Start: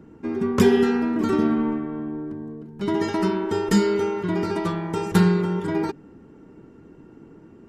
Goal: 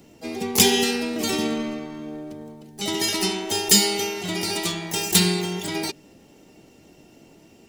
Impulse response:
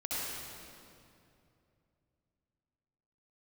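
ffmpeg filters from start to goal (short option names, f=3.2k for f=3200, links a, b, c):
-filter_complex "[0:a]aexciter=amount=9.9:drive=4.8:freq=2.2k,asplit=2[a][b];[b]asetrate=88200,aresample=44100,atempo=0.5,volume=-7dB[c];[a][c]amix=inputs=2:normalize=0,volume=-5.5dB"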